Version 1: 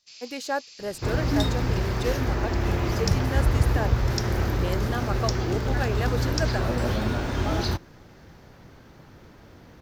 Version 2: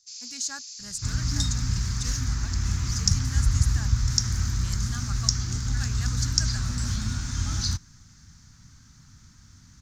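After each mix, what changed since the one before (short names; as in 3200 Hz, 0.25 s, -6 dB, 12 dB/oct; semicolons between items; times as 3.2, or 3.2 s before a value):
master: add EQ curve 100 Hz 0 dB, 250 Hz -7 dB, 370 Hz -25 dB, 550 Hz -29 dB, 1300 Hz -6 dB, 2800 Hz -9 dB, 6800 Hz +14 dB, 13000 Hz -8 dB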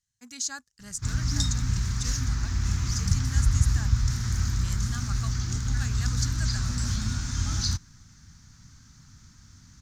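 first sound: muted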